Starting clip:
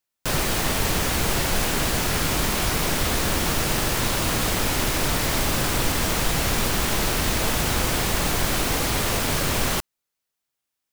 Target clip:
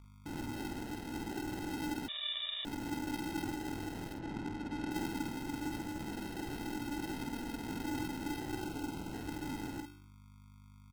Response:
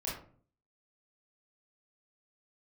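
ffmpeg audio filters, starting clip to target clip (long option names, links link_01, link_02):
-filter_complex "[0:a]asplit=3[link_01][link_02][link_03];[link_01]bandpass=frequency=300:width_type=q:width=8,volume=0dB[link_04];[link_02]bandpass=frequency=870:width_type=q:width=8,volume=-6dB[link_05];[link_03]bandpass=frequency=2240:width_type=q:width=8,volume=-9dB[link_06];[link_04][link_05][link_06]amix=inputs=3:normalize=0,bandreject=frequency=58.37:width_type=h:width=4,bandreject=frequency=116.74:width_type=h:width=4,bandreject=frequency=175.11:width_type=h:width=4,bandreject=frequency=233.48:width_type=h:width=4,bandreject=frequency=291.85:width_type=h:width=4,bandreject=frequency=350.22:width_type=h:width=4,bandreject=frequency=408.59:width_type=h:width=4,bandreject=frequency=466.96:width_type=h:width=4,bandreject=frequency=525.33:width_type=h:width=4,aphaser=in_gain=1:out_gain=1:delay=4.5:decay=0.34:speed=0.2:type=triangular,aeval=exprs='val(0)+0.00282*(sin(2*PI*50*n/s)+sin(2*PI*2*50*n/s)/2+sin(2*PI*3*50*n/s)/3+sin(2*PI*4*50*n/s)/4+sin(2*PI*5*50*n/s)/5)':channel_layout=same,acrusher=samples=38:mix=1:aa=0.000001,asettb=1/sr,asplit=3[link_07][link_08][link_09];[link_07]atrim=end=4.144[link_10];[link_08]atrim=start=4.14:end=4.91,asetpts=PTS-STARTPTS,afade=type=in:duration=0.004:curve=qsin,afade=type=out:start_time=0.766:duration=0.004:curve=qsin,adynamicsmooth=sensitivity=6:basefreq=2200[link_11];[link_09]atrim=start=4.906[link_12];[link_10][link_11]acrossfade=duration=0.004:curve1=hsin:curve2=qsin[link_13];[link_13][link_12]acrossfade=duration=0.004:curve1=qsin:curve2=hsin,asettb=1/sr,asplit=3[link_14][link_15][link_16];[link_14]atrim=end=8.594[link_17];[link_15]atrim=start=8.59:end=9.13,asetpts=PTS-STARTPTS,afade=type=in:duration=0.004:curve=qsin,afade=type=out:start_time=0.536:duration=0.004:curve=qsin,asuperstop=centerf=1800:order=20:qfactor=4[link_18];[link_16]atrim=start=9.126[link_19];[link_17][link_18]acrossfade=duration=0.004:curve1=hsin:curve2=qsin[link_20];[link_20][link_19]acrossfade=duration=0.004:curve1=qsin:curve2=hsin,asplit=2[link_21][link_22];[link_22]adelay=49,volume=-6.5dB[link_23];[link_21][link_23]amix=inputs=2:normalize=0,asettb=1/sr,asplit=3[link_24][link_25][link_26];[link_24]atrim=end=2.084[link_27];[link_25]atrim=start=2.08:end=2.65,asetpts=PTS-STARTPTS,afade=type=in:duration=0.004:curve=qsin,afade=type=out:start_time=0.566:duration=0.004:curve=qsin,lowpass=frequency=3200:width_type=q:width=0.5098,lowpass=frequency=3200:width_type=q:width=0.6013,lowpass=frequency=3200:width_type=q:width=0.9,lowpass=frequency=3200:width_type=q:width=2.563,afreqshift=-3800[link_28];[link_26]atrim=start=2.646[link_29];[link_27][link_28]acrossfade=duration=0.004:curve1=hsin:curve2=qsin[link_30];[link_30][link_29]acrossfade=duration=0.004:curve1=qsin:curve2=hsin,volume=-3dB"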